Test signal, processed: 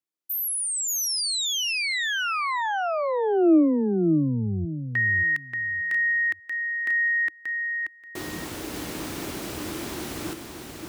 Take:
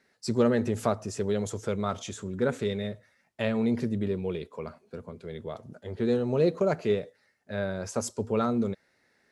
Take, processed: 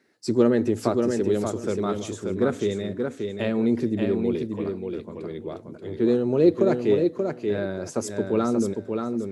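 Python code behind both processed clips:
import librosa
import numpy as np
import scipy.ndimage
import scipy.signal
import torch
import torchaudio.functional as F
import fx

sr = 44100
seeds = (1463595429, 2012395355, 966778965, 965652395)

p1 = scipy.signal.sosfilt(scipy.signal.butter(2, 66.0, 'highpass', fs=sr, output='sos'), x)
p2 = fx.peak_eq(p1, sr, hz=320.0, db=13.0, octaves=0.53)
y = p2 + fx.echo_feedback(p2, sr, ms=582, feedback_pct=19, wet_db=-5, dry=0)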